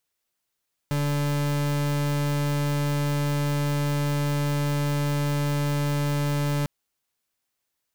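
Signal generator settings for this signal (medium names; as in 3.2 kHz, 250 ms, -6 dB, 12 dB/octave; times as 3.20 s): pulse 145 Hz, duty 39% -24.5 dBFS 5.75 s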